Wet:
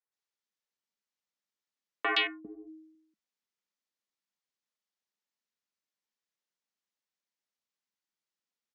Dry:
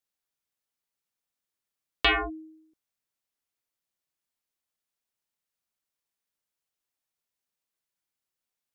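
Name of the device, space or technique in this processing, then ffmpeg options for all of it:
television speaker: -filter_complex "[0:a]highpass=f=180:w=0.5412,highpass=f=180:w=1.3066,equalizer=f=210:t=q:w=4:g=6,equalizer=f=700:t=q:w=4:g=-4,equalizer=f=1.9k:t=q:w=4:g=4,lowpass=f=6.9k:w=0.5412,lowpass=f=6.9k:w=1.3066,asettb=1/sr,asplit=3[a][b][c];[a]atrim=end=2.154[d];[b]atrim=start=2.15:end=2.55,asetpts=PTS-STARTPTS,afade=t=in:d=0.004:c=qsin,afade=t=out:st=0.396:d=0.004:c=qsin,lowpass=1.1k[e];[c]atrim=start=2.546[f];[d][e]acrossfade=d=0.004:c1=hsin:c2=qsin[g];[g][f]acrossfade=d=0.004:c1=qsin:c2=hsin,acrossover=split=290|1900[h][i][j];[j]adelay=120[k];[h]adelay=400[l];[l][i][k]amix=inputs=3:normalize=0,volume=-2.5dB"

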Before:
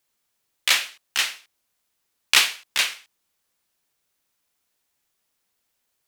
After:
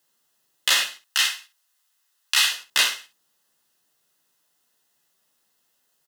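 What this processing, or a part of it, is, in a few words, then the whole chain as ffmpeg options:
PA system with an anti-feedback notch: -filter_complex "[0:a]asettb=1/sr,asplit=3[a][b][c];[a]atrim=end=1.024[d];[b]atrim=start=1.02:end=2.52,asetpts=PTS-STARTPTS,afade=t=in:d=0.004:c=qsin,afade=t=out:st=1.496:d=0.004:c=qsin,highpass=1k[e];[c]atrim=start=2.516[f];[d][e]acrossfade=d=0.004:c1=hsin:c2=qsin[g];[g][f]acrossfade=d=0.004:c1=qsin:c2=hsin,highpass=f=110:w=0.5412,highpass=f=110:w=1.3066,asuperstop=centerf=2300:order=8:qfactor=7,aecho=1:1:13|65:0.473|0.224,alimiter=limit=-11dB:level=0:latency=1:release=67,volume=4dB"

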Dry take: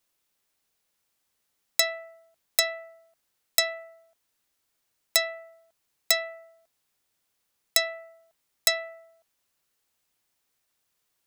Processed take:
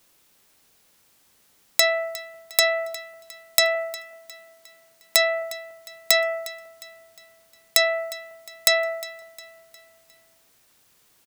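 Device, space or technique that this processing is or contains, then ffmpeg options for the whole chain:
mastering chain: -filter_complex "[0:a]equalizer=f=200:t=o:w=2.7:g=3.5,acompressor=threshold=-28dB:ratio=2.5,asoftclip=type=tanh:threshold=-10.5dB,alimiter=level_in=16.5dB:limit=-1dB:release=50:level=0:latency=1,asettb=1/sr,asplit=3[a][b][c];[a]atrim=end=3.754[d];[b]atrim=start=3.75:end=5.42,asetpts=PTS-STARTPTS,afade=t=in:d=0.004:c=qsin,afade=t=out:st=1.666:d=0.004:c=qsin,highpass=f=120:w=0.5412,highpass=f=120:w=1.3066[e];[c]atrim=start=5.416[f];[d][e]acrossfade=d=0.004:c1=hsin:c2=qsin[g];[g][f]acrossfade=d=0.004:c1=qsin:c2=hsin,aecho=1:1:357|714|1071|1428:0.126|0.0567|0.0255|0.0115,volume=-1dB"

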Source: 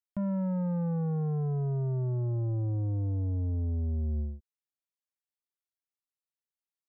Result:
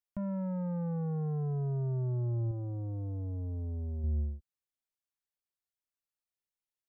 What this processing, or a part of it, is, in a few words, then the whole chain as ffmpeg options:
low shelf boost with a cut just above: -filter_complex "[0:a]asettb=1/sr,asplit=3[a][b][c];[a]atrim=end=2.514[d];[b]atrim=start=2.51:end=4.04,asetpts=PTS-STARTPTS,afade=t=in:d=0.004:c=qsin,afade=t=out:st=1.526:d=0.004:c=qsin,bass=f=250:g=-6,treble=f=4k:g=7[e];[c]atrim=start=4.036[f];[d][e]acrossfade=d=0.004:c1=hsin:c2=qsin[g];[g][f]acrossfade=d=0.004:c1=qsin:c2=hsin,lowshelf=f=67:g=7.5,equalizer=f=190:t=o:w=0.77:g=-2.5,volume=-3dB"

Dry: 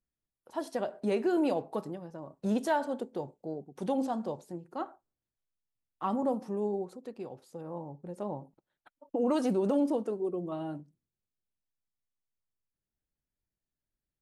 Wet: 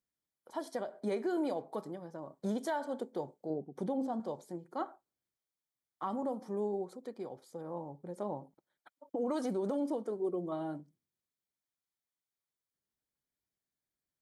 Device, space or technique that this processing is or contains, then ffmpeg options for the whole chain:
PA system with an anti-feedback notch: -filter_complex "[0:a]asettb=1/sr,asplit=3[a][b][c];[a]atrim=end=3.504[d];[b]atrim=start=3.5:end=4.2,asetpts=PTS-STARTPTS,afade=t=in:d=0.004:c=qsin,afade=t=out:st=0.696:d=0.004:c=qsin,tiltshelf=f=930:g=6[e];[c]atrim=start=4.196[f];[d][e]acrossfade=d=0.004:c1=hsin:c2=qsin[g];[g][f]acrossfade=d=0.004:c1=qsin:c2=hsin,highpass=f=200:p=1,asuperstop=centerf=2700:order=12:qfactor=6.3,alimiter=level_in=2dB:limit=-24dB:level=0:latency=1:release=343,volume=-2dB"

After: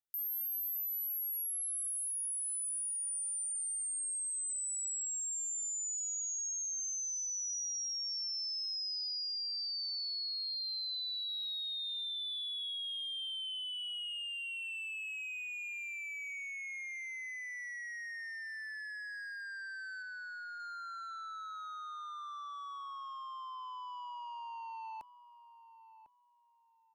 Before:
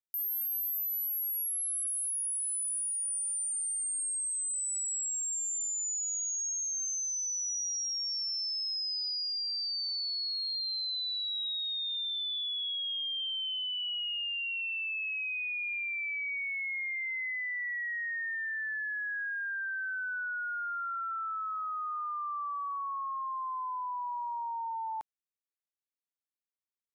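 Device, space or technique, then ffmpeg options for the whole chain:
one-band saturation: -filter_complex "[0:a]asplit=3[a][b][c];[a]afade=t=out:st=20.02:d=0.02[d];[b]lowpass=1.6k,afade=t=in:st=20.02:d=0.02,afade=t=out:st=20.58:d=0.02[e];[c]afade=t=in:st=20.58:d=0.02[f];[d][e][f]amix=inputs=3:normalize=0,acrossover=split=390|3300[g][h][i];[h]asoftclip=type=tanh:threshold=-39dB[j];[g][j][i]amix=inputs=3:normalize=0,asplit=2[k][l];[l]adelay=1050,lowpass=f=1.3k:p=1,volume=-12.5dB,asplit=2[m][n];[n]adelay=1050,lowpass=f=1.3k:p=1,volume=0.3,asplit=2[o][p];[p]adelay=1050,lowpass=f=1.3k:p=1,volume=0.3[q];[k][m][o][q]amix=inputs=4:normalize=0,volume=-4dB"

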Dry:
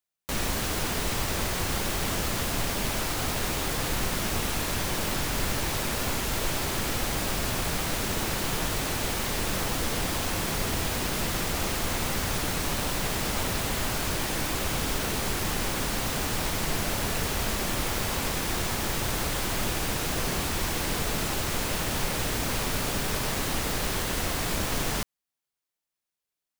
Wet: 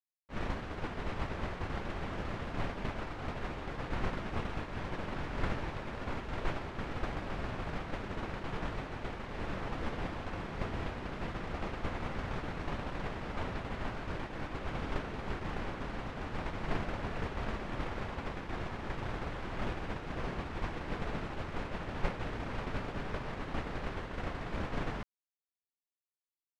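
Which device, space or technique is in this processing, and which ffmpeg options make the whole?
hearing-loss simulation: -af "lowpass=2k,agate=range=-33dB:threshold=-19dB:ratio=3:detection=peak,volume=6.5dB"

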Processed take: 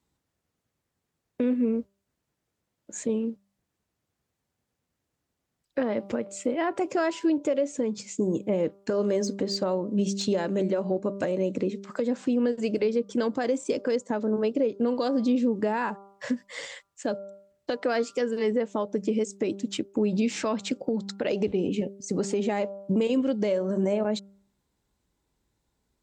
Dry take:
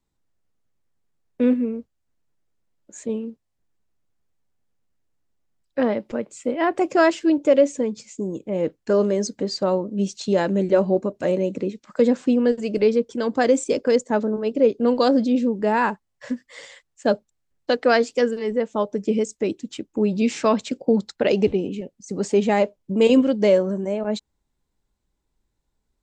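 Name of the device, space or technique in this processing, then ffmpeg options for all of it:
podcast mastering chain: -af "highpass=63,bandreject=f=197.6:t=h:w=4,bandreject=f=395.2:t=h:w=4,bandreject=f=592.8:t=h:w=4,bandreject=f=790.4:t=h:w=4,bandreject=f=988:t=h:w=4,bandreject=f=1.1856k:t=h:w=4,bandreject=f=1.3832k:t=h:w=4,deesser=0.65,acompressor=threshold=-23dB:ratio=3,alimiter=limit=-20dB:level=0:latency=1:release=281,volume=4dB" -ar 44100 -c:a libmp3lame -b:a 112k

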